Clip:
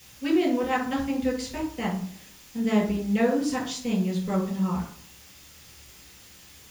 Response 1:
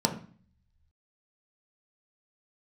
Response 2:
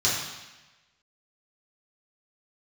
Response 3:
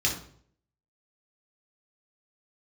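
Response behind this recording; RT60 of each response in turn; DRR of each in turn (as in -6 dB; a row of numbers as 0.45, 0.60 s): 3; 0.45, 1.1, 0.60 s; 2.0, -8.5, -1.5 dB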